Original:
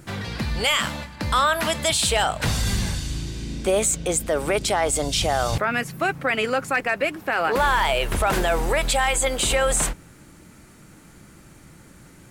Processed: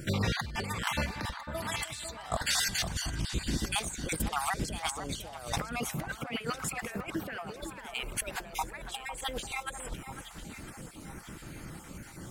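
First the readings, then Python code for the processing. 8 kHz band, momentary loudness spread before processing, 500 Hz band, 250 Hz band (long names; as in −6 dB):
−11.5 dB, 8 LU, −17.5 dB, −8.0 dB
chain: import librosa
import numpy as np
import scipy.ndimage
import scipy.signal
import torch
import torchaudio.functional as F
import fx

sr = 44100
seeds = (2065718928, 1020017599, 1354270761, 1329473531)

y = fx.spec_dropout(x, sr, seeds[0], share_pct=35)
y = fx.over_compress(y, sr, threshold_db=-31.0, ratio=-0.5)
y = fx.echo_alternate(y, sr, ms=501, hz=1700.0, feedback_pct=63, wet_db=-8.5)
y = y * librosa.db_to_amplitude(-3.5)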